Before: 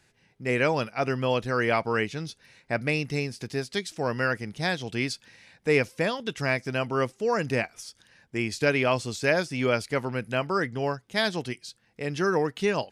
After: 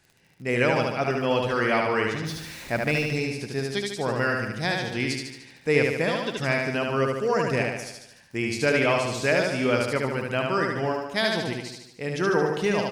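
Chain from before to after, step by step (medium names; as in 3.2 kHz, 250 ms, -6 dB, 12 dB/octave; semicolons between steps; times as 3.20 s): 2.25–3.06 s: jump at every zero crossing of -38 dBFS; crackle 26 per s -41 dBFS; feedback delay 74 ms, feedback 56%, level -3 dB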